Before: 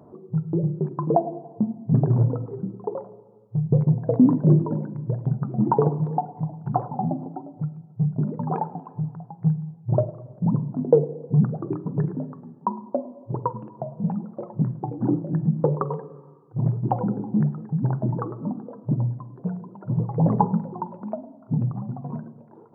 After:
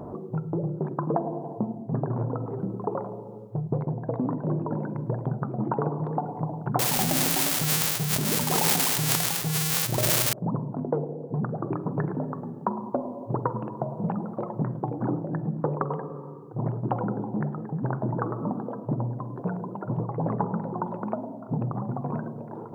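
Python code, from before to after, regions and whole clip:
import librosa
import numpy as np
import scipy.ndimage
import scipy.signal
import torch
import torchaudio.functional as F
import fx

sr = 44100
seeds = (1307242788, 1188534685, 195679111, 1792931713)

y = fx.chain(x, sr, fx.crossing_spikes(level_db=-19.5),
    fx.sustainer(db_per_s=37.0), at=(6.79, 10.33))
y = fx.low_shelf(y, sr, hz=410.0, db=8.0)
y = fx.rider(y, sr, range_db=4, speed_s=0.5)
y = fx.spectral_comp(y, sr, ratio=2.0)
y = y * 10.0 ** (-1.0 / 20.0)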